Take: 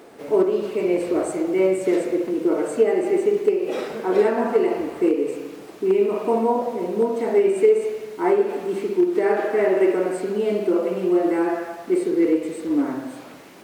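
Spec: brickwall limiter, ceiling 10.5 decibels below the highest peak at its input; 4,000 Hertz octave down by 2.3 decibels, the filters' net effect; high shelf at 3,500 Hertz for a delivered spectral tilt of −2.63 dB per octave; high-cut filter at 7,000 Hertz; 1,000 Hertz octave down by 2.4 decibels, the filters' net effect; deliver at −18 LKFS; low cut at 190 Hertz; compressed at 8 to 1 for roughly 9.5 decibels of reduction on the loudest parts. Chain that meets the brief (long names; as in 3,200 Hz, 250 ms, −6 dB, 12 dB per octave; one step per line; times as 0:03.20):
high-pass filter 190 Hz
low-pass filter 7,000 Hz
parametric band 1,000 Hz −3.5 dB
high-shelf EQ 3,500 Hz +7.5 dB
parametric band 4,000 Hz −8 dB
downward compressor 8 to 1, threshold −23 dBFS
level +15.5 dB
brickwall limiter −10.5 dBFS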